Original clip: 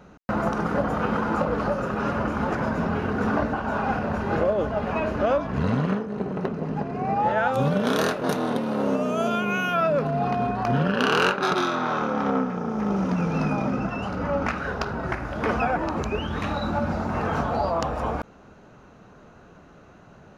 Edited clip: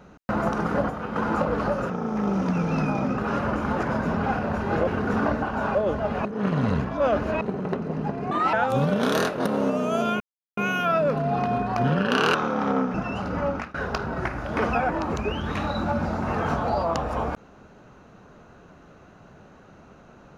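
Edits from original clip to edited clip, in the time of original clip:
0.90–1.16 s: gain -7 dB
3.86–4.47 s: move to 2.98 s
4.97–6.13 s: reverse
7.03–7.37 s: speed 153%
8.30–8.72 s: delete
9.46 s: insert silence 0.37 s
11.23–11.93 s: delete
12.53–13.81 s: move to 1.90 s
14.32–14.61 s: fade out, to -23 dB

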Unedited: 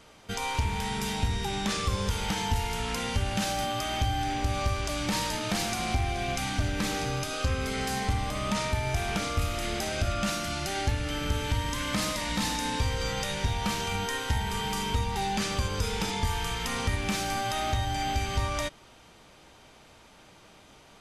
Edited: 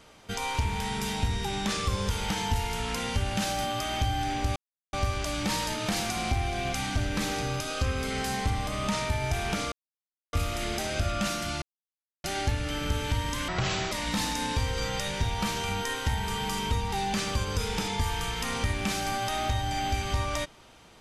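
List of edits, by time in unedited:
4.56 s: insert silence 0.37 s
9.35 s: insert silence 0.61 s
10.64 s: insert silence 0.62 s
11.88–12.15 s: speed 62%

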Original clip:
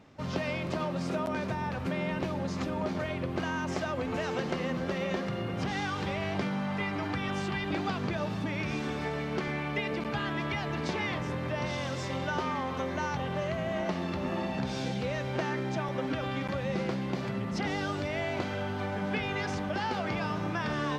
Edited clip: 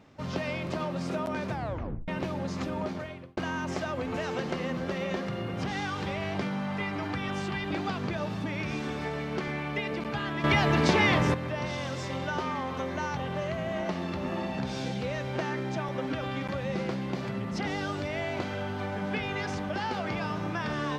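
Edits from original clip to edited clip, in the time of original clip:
1.51 s: tape stop 0.57 s
2.80–3.37 s: fade out
10.44–11.34 s: gain +9.5 dB

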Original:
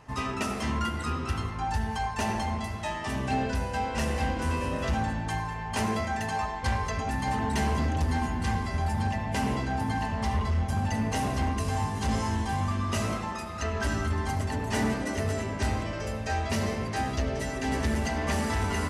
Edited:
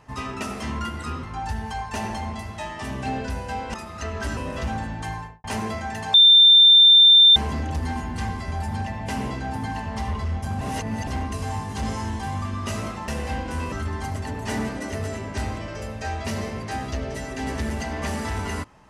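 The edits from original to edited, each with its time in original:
1.23–1.48 s: delete
3.99–4.63 s: swap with 13.34–13.97 s
5.43–5.70 s: studio fade out
6.40–7.62 s: bleep 3.58 kHz -8.5 dBFS
10.87–11.33 s: reverse

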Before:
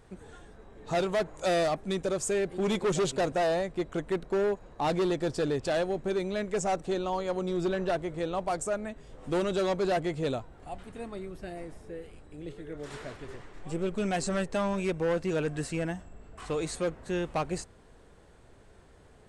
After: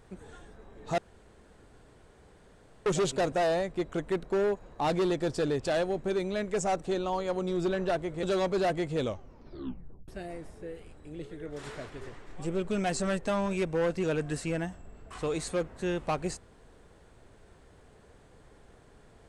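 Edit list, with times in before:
0.98–2.86 s: room tone
8.23–9.50 s: delete
10.25 s: tape stop 1.10 s

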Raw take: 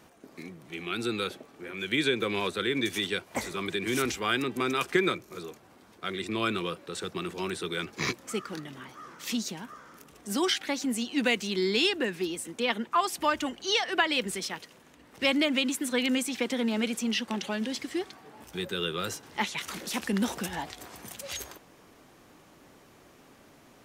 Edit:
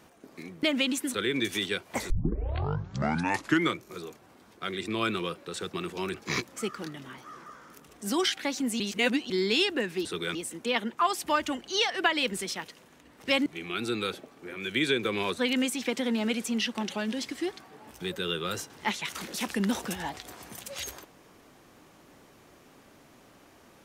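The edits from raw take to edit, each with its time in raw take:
0.63–2.55 s: swap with 15.40–15.91 s
3.51 s: tape start 1.68 s
7.55–7.85 s: move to 12.29 s
9.17–9.70 s: delete
11.04–11.54 s: reverse

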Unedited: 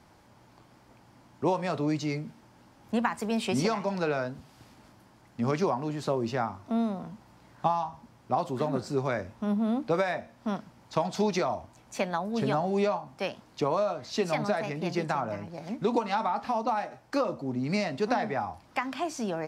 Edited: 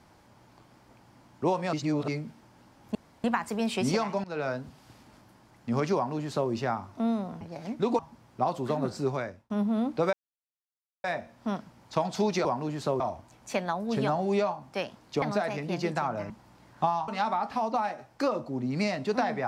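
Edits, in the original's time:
1.73–2.08 s: reverse
2.95 s: insert room tone 0.29 s
3.95–4.20 s: fade in, from -18.5 dB
5.66–6.21 s: copy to 11.45 s
7.12–7.90 s: swap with 15.43–16.01 s
8.99–9.41 s: fade out
10.04 s: insert silence 0.91 s
13.67–14.35 s: delete

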